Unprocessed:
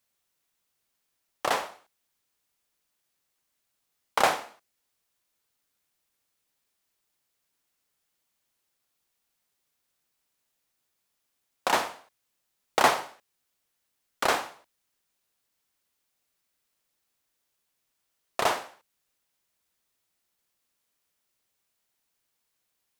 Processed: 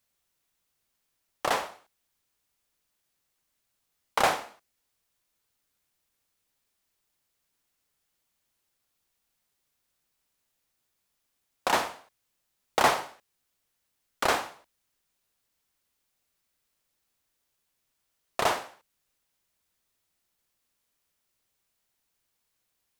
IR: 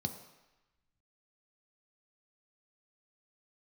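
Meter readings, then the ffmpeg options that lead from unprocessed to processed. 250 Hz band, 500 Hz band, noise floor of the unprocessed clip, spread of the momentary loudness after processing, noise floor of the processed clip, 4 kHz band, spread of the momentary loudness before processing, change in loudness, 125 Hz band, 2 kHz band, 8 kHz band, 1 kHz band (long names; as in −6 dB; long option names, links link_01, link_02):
0.0 dB, −0.5 dB, −79 dBFS, 13 LU, −79 dBFS, −0.5 dB, 14 LU, −0.5 dB, +2.5 dB, −0.5 dB, −0.5 dB, −0.5 dB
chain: -af "lowshelf=frequency=110:gain=7,asoftclip=type=tanh:threshold=-10dB"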